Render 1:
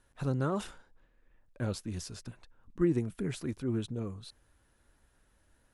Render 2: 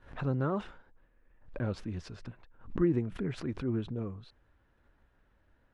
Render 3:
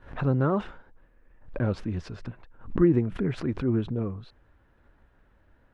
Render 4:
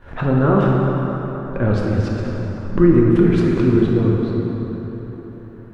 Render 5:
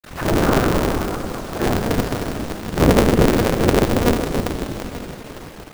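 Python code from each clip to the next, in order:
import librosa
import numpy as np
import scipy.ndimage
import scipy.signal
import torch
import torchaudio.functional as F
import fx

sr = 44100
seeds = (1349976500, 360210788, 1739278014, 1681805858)

y1 = scipy.signal.sosfilt(scipy.signal.butter(2, 2500.0, 'lowpass', fs=sr, output='sos'), x)
y1 = fx.pre_swell(y1, sr, db_per_s=130.0)
y2 = fx.high_shelf(y1, sr, hz=3800.0, db=-8.0)
y2 = F.gain(torch.from_numpy(y2), 7.0).numpy()
y3 = fx.rev_plate(y2, sr, seeds[0], rt60_s=4.4, hf_ratio=0.55, predelay_ms=0, drr_db=-3.0)
y3 = F.gain(torch.from_numpy(y3), 6.5).numpy()
y4 = fx.quant_dither(y3, sr, seeds[1], bits=6, dither='none')
y4 = fx.whisperise(y4, sr, seeds[2])
y4 = y4 * np.sign(np.sin(2.0 * np.pi * 120.0 * np.arange(len(y4)) / sr))
y4 = F.gain(torch.from_numpy(y4), -1.5).numpy()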